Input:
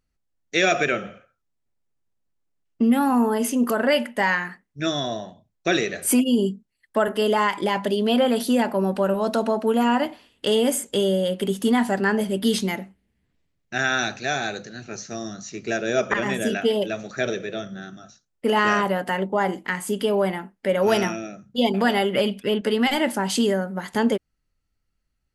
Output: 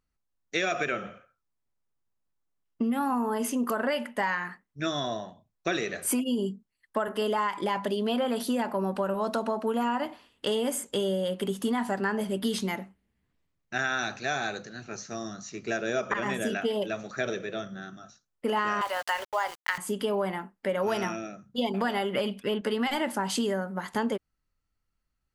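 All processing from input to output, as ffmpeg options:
-filter_complex "[0:a]asettb=1/sr,asplit=3[s0][s1][s2];[s0]atrim=end=18.814[s3];[s1]atrim=start=18.81:end=19.78,asetpts=PTS-STARTPTS,afade=t=in:d=0.004:c=qsin,afade=t=out:st=0.966:d=0.004:c=qsin,highpass=f=550:w=0.5412,highpass=f=550:w=1.3066,equalizer=f=5300:t=o:w=2:g=11.5,aeval=exprs='val(0)*gte(abs(val(0)),0.0237)':c=same[s4];[s2]atrim=start=19.776[s5];[s3][s4]acrossfade=d=0.004:c1=hsin:c2=qsin[s6];[s6][s5]acrossfade=d=0.004:c1=qsin:c2=hsin,equalizer=f=1100:w=1.7:g=6,acompressor=threshold=0.112:ratio=6,volume=0.562"

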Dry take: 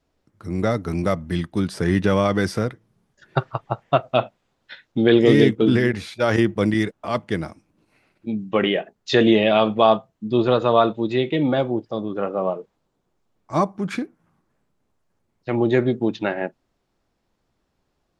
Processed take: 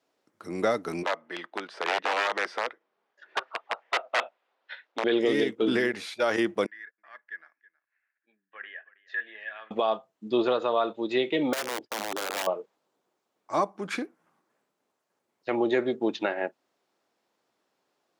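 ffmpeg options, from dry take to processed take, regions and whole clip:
-filter_complex "[0:a]asettb=1/sr,asplit=3[s0][s1][s2];[s0]atrim=end=1.034[s3];[s1]atrim=start=1.03:end=5.04,asetpts=PTS-STARTPTS,afade=t=in:d=0.004:c=qsin,afade=t=out:st=4.006:d=0.004:c=qsin,aeval=exprs='(mod(4.22*val(0)+1,2)-1)/4.22':c=same,highpass=480,lowpass=2900[s4];[s2]atrim=start=5.036[s5];[s3][s4]acrossfade=d=0.004:c1=hsin:c2=qsin[s6];[s6][s5]acrossfade=d=0.004:c1=qsin:c2=hsin,asettb=1/sr,asplit=3[s7][s8][s9];[s7]atrim=end=6.664[s10];[s8]atrim=start=6.66:end=9.71,asetpts=PTS-STARTPTS,afade=t=in:d=0.004:c=qsin,afade=t=out:st=3.046:d=0.004:c=qsin,bandpass=f=1700:t=q:w=17,aecho=1:1:321:0.0944,atrim=end_sample=134505[s11];[s9]atrim=start=9.706[s12];[s10][s11]acrossfade=d=0.004:c1=hsin:c2=qsin[s13];[s13][s12]acrossfade=d=0.004:c1=qsin:c2=hsin,asettb=1/sr,asplit=3[s14][s15][s16];[s14]atrim=end=11.534[s17];[s15]atrim=start=11.53:end=12.47,asetpts=PTS-STARTPTS,afade=t=in:d=0.004:c=qsin,afade=t=out:st=0.936:d=0.004:c=qsin,agate=range=0.0224:threshold=0.0112:ratio=3:release=100:detection=peak,acompressor=threshold=0.0631:ratio=6:attack=3.2:release=140:knee=1:detection=peak,aeval=exprs='(mod(15.8*val(0)+1,2)-1)/15.8':c=same[s18];[s16]atrim=start=12.466[s19];[s17][s18]acrossfade=d=0.004:c1=hsin:c2=qsin[s20];[s20][s19]acrossfade=d=0.004:c1=qsin:c2=hsin,highpass=370,alimiter=limit=0.188:level=0:latency=1:release=403"

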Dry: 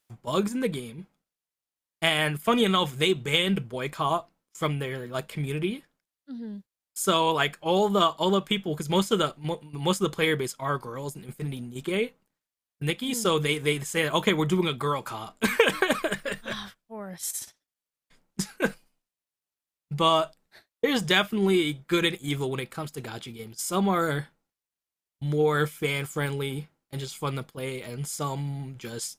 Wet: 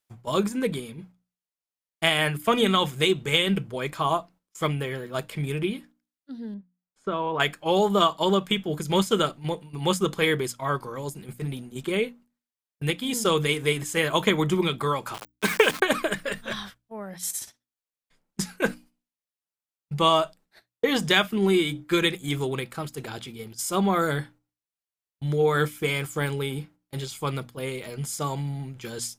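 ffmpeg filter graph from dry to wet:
-filter_complex "[0:a]asettb=1/sr,asplit=3[s0][s1][s2];[s0]atrim=end=6.544[s3];[s1]atrim=start=6.54:end=7.4,asetpts=PTS-STARTPTS,afade=t=in:d=0.004:c=qsin,afade=t=out:st=0.856:d=0.004:c=qsin,lowpass=1600,acompressor=threshold=0.0562:ratio=4:attack=3.2:release=140:knee=1:detection=peak[s4];[s2]atrim=start=7.396[s5];[s3][s4]acrossfade=d=0.004:c1=hsin:c2=qsin[s6];[s6][s5]acrossfade=d=0.004:c1=qsin:c2=hsin,asettb=1/sr,asplit=3[s7][s8][s9];[s7]atrim=end=15.144[s10];[s8]atrim=start=15.14:end=15.82,asetpts=PTS-STARTPTS,afade=t=in:d=0.004:c=qsin,afade=t=out:st=0.676:d=0.004:c=qsin,highpass=220,aeval=exprs='val(0)*gte(abs(val(0)),0.0299)':c=same,afreqshift=-22[s11];[s9]atrim=start=15.816[s12];[s10][s11]acrossfade=d=0.004:c1=hsin:c2=qsin[s13];[s13][s12]acrossfade=d=0.004:c1=qsin:c2=hsin,agate=range=0.447:threshold=0.00282:ratio=16:detection=peak,bandreject=f=60:t=h:w=6,bandreject=f=120:t=h:w=6,bandreject=f=180:t=h:w=6,bandreject=f=240:t=h:w=6,bandreject=f=300:t=h:w=6,volume=1.19"

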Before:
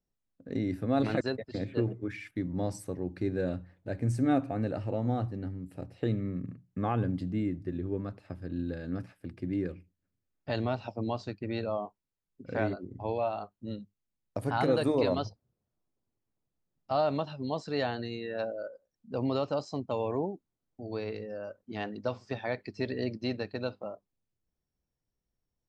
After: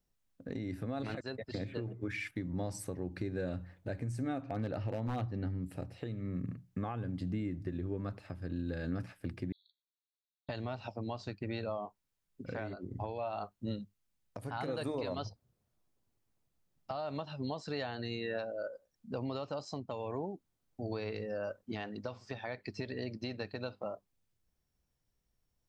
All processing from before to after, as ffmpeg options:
-filter_complex "[0:a]asettb=1/sr,asplit=3[s0][s1][s2];[s0]atrim=end=4.424[s3];[s1]atrim=start=4.42:end=5.64,asetpts=PTS-STARTPTS,afade=t=in:d=0.004:c=qsin,afade=t=out:st=1.216:d=0.004:c=qsin,lowpass=f=5900:w=0.5412,lowpass=f=5900:w=1.3066,aeval=exprs='0.0668*(abs(mod(val(0)/0.0668+3,4)-2)-1)':c=same[s4];[s2]atrim=start=5.636[s5];[s3][s4]acrossfade=d=0.004:c1=hsin:c2=qsin[s6];[s6][s5]acrossfade=d=0.004:c1=qsin:c2=hsin,asettb=1/sr,asplit=3[s7][s8][s9];[s7]atrim=end=9.524[s10];[s8]atrim=start=9.52:end=10.49,asetpts=PTS-STARTPTS,afade=t=in:d=0.004:c=qsin,afade=t=out:st=0.966:d=0.004:c=qsin,asuperpass=centerf=3900:order=20:qfactor=4.2,aeval=exprs='val(0)*sin(2*PI*180*n/s)':c=same[s11];[s9]atrim=start=10.486[s12];[s10][s11]acrossfade=d=0.004:c1=hsin:c2=qsin[s13];[s13][s12]acrossfade=d=0.004:c1=qsin:c2=hsin,equalizer=f=320:t=o:w=2.2:g=-4,acompressor=threshold=0.0141:ratio=5,alimiter=level_in=2.51:limit=0.0631:level=0:latency=1:release=415,volume=0.398,volume=1.88"

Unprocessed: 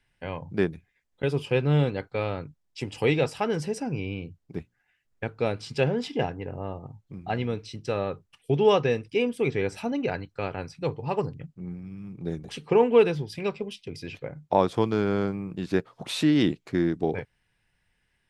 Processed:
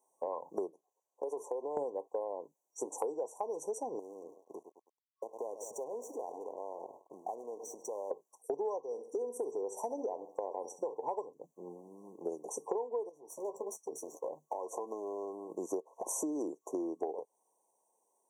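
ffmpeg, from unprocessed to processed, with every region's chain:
-filter_complex "[0:a]asettb=1/sr,asplit=3[s0][s1][s2];[s0]atrim=end=0.704[s3];[s1]atrim=start=0.7:end=1.77,asetpts=PTS-STARTPTS,afade=t=in:d=0.004:c=qsin,afade=t=out:st=1.066:d=0.004:c=qsin,highpass=f=540:p=1,highshelf=f=4300:g=-7.5,acompressor=threshold=0.0224:ratio=6:attack=3.2:release=140:knee=1:detection=peak[s4];[s2]atrim=start=1.766[s5];[s3][s4]acrossfade=d=0.004:c1=hsin:c2=qsin[s6];[s6][s5]acrossfade=d=0.004:c1=qsin:c2=hsin,asettb=1/sr,asplit=3[s7][s8][s9];[s7]atrim=end=3.994[s10];[s8]atrim=start=3.99:end=8.11,asetpts=PTS-STARTPTS,afade=t=in:d=0.004:c=qsin,afade=t=out:st=4.116:d=0.004:c=qsin,aecho=1:1:102|204|306|408:0.112|0.055|0.0269|0.0132,atrim=end_sample=181692,acompressor=threshold=0.0141:ratio=16:attack=3.2:release=140:knee=1:detection=peak,aeval=exprs='sgn(val(0))*max(abs(val(0))-0.00126,0)':c=same[s11];[s9]atrim=start=8.106[s12];[s10][s11]acrossfade=d=0.004:c1=hsin:c2=qsin[s13];[s13][s12]acrossfade=d=0.004:c1=qsin:c2=hsin,asettb=1/sr,asplit=3[s14][s15][s16];[s14]atrim=end=8.794[s17];[s15]atrim=start=8.79:end=10.94,asetpts=PTS-STARTPTS,afade=t=in:d=0.004:c=qsin,afade=t=out:st=2.146:d=0.004:c=qsin,acompressor=threshold=0.0355:ratio=2:attack=3.2:release=140:knee=1:detection=peak,aecho=1:1:67|134|201:0.188|0.064|0.0218,atrim=end_sample=94815[s18];[s16]atrim=start=10.936[s19];[s17][s18]acrossfade=d=0.004:c1=hsin:c2=qsin[s20];[s20][s19]acrossfade=d=0.004:c1=qsin:c2=hsin,asettb=1/sr,asplit=3[s21][s22][s23];[s21]atrim=end=13.094[s24];[s22]atrim=start=13.09:end=15.5,asetpts=PTS-STARTPTS,afade=t=in:d=0.004:c=qsin,afade=t=out:st=2.406:d=0.004:c=qsin,acompressor=threshold=0.02:ratio=20:attack=3.2:release=140:knee=1:detection=peak,aeval=exprs='clip(val(0),-1,0.0119)':c=same,asplit=2[s25][s26];[s26]adelay=13,volume=0.376[s27];[s25][s27]amix=inputs=2:normalize=0,atrim=end_sample=106281[s28];[s23]atrim=start=15.496[s29];[s24][s28]acrossfade=d=0.004:c1=hsin:c2=qsin[s30];[s30][s29]acrossfade=d=0.004:c1=qsin:c2=hsin,afftfilt=real='re*(1-between(b*sr/4096,1100,5700))':imag='im*(1-between(b*sr/4096,1100,5700))':win_size=4096:overlap=0.75,highpass=f=420:w=0.5412,highpass=f=420:w=1.3066,acompressor=threshold=0.01:ratio=16,volume=2.24"

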